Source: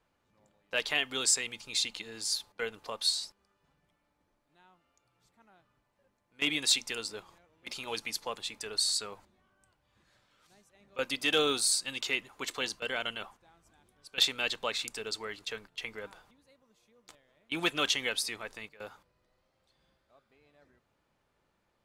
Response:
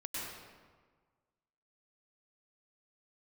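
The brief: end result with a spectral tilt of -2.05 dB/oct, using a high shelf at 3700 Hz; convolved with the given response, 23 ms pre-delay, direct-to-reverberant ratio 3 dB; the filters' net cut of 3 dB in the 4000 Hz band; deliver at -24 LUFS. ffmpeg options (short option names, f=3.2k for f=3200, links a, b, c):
-filter_complex "[0:a]highshelf=f=3.7k:g=6,equalizer=f=4k:t=o:g=-7.5,asplit=2[a][b];[1:a]atrim=start_sample=2205,adelay=23[c];[b][c]afir=irnorm=-1:irlink=0,volume=-4.5dB[d];[a][d]amix=inputs=2:normalize=0,volume=6.5dB"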